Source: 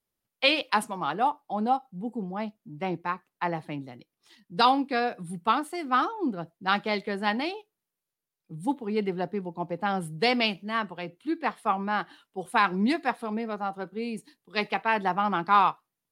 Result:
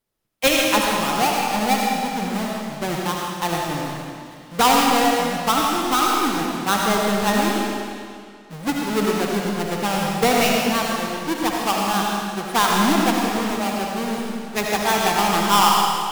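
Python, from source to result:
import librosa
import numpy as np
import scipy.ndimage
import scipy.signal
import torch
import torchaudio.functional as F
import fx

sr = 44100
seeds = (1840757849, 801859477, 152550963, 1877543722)

y = fx.halfwave_hold(x, sr)
y = fx.rev_freeverb(y, sr, rt60_s=2.2, hf_ratio=0.95, predelay_ms=35, drr_db=-2.0)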